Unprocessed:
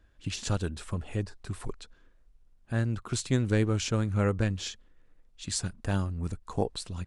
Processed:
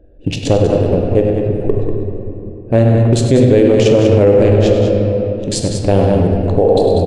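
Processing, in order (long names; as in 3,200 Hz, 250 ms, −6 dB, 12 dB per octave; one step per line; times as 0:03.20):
adaptive Wiener filter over 41 samples
drawn EQ curve 180 Hz 0 dB, 540 Hz +15 dB, 1,300 Hz −6 dB, 2,700 Hz +3 dB, 5,800 Hz −4 dB
on a send: loudspeakers that aren't time-aligned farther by 34 metres −11 dB, 66 metres −8 dB
on the sum: rectangular room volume 150 cubic metres, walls hard, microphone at 0.31 metres
boost into a limiter +15.5 dB
level −1 dB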